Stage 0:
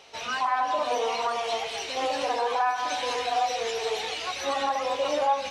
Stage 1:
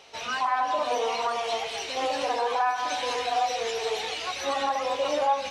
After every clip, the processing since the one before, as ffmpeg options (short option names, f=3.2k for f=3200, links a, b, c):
-af anull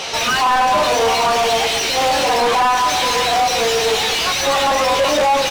-filter_complex "[0:a]bass=f=250:g=14,treble=f=4k:g=11,asplit=2[a][b];[b]adelay=13,volume=-5dB[c];[a][c]amix=inputs=2:normalize=0,asplit=2[d][e];[e]highpass=f=720:p=1,volume=31dB,asoftclip=type=tanh:threshold=-11.5dB[f];[d][f]amix=inputs=2:normalize=0,lowpass=f=2.6k:p=1,volume=-6dB,volume=3dB"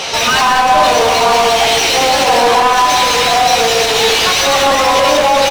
-af "alimiter=limit=-12.5dB:level=0:latency=1,aecho=1:1:75.8|122.4|195.3:0.251|0.282|0.501,volume=5dB"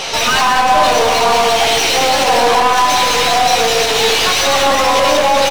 -af "aeval=exprs='0.841*(cos(1*acos(clip(val(0)/0.841,-1,1)))-cos(1*PI/2))+0.0531*(cos(6*acos(clip(val(0)/0.841,-1,1)))-cos(6*PI/2))':c=same,volume=-1.5dB"